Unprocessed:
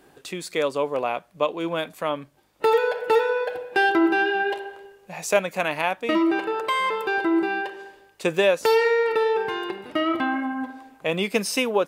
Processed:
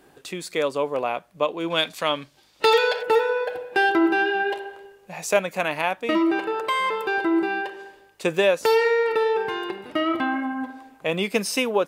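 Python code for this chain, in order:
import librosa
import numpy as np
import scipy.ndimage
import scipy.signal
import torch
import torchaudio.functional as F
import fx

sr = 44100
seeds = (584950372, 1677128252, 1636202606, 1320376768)

y = fx.peak_eq(x, sr, hz=4400.0, db=14.0, octaves=2.0, at=(1.7, 3.03))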